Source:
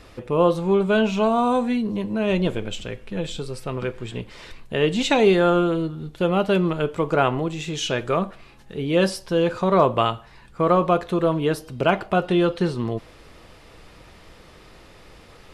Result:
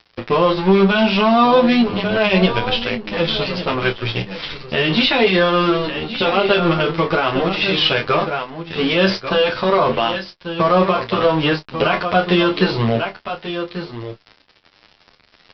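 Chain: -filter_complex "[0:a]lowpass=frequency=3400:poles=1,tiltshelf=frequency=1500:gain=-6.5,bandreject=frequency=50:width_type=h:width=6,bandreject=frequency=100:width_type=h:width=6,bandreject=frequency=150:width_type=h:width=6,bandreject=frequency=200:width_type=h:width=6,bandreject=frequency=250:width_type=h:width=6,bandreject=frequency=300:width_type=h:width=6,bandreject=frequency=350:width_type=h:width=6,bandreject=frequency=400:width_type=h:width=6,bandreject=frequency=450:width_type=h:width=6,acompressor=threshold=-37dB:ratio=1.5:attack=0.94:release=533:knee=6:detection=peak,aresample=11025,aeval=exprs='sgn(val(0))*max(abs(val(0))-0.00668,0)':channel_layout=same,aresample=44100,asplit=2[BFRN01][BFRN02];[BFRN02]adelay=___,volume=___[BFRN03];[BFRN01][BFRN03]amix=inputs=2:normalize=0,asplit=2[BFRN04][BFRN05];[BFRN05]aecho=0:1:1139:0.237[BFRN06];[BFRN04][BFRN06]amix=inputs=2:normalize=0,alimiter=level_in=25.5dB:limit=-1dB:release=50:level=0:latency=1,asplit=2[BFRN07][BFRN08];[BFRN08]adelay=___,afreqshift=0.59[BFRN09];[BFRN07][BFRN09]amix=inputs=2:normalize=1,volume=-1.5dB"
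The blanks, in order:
26, -9dB, 9.4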